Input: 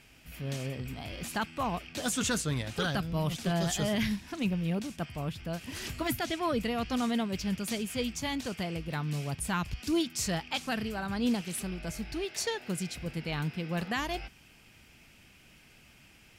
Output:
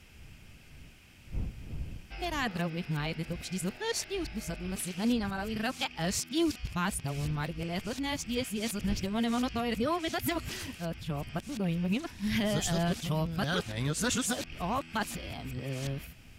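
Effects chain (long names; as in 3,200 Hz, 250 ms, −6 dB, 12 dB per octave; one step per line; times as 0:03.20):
played backwards from end to start
wind on the microphone 99 Hz −47 dBFS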